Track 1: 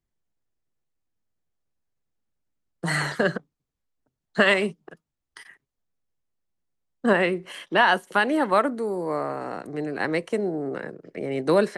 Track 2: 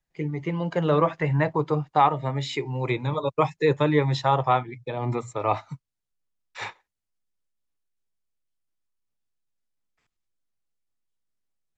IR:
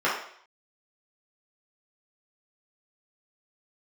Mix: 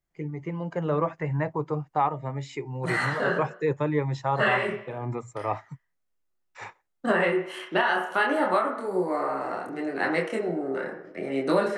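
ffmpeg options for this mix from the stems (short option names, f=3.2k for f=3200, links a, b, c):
-filter_complex "[0:a]flanger=delay=22.5:depth=7.8:speed=0.7,volume=0dB,asplit=2[a][b];[b]volume=-14.5dB[c];[1:a]equalizer=f=3.7k:t=o:w=0.89:g=-11,volume=-4.5dB,asplit=2[d][e];[e]apad=whole_len=519125[f];[a][f]sidechaincompress=threshold=-38dB:ratio=8:attack=16:release=123[g];[2:a]atrim=start_sample=2205[h];[c][h]afir=irnorm=-1:irlink=0[i];[g][d][i]amix=inputs=3:normalize=0,alimiter=limit=-12.5dB:level=0:latency=1:release=356"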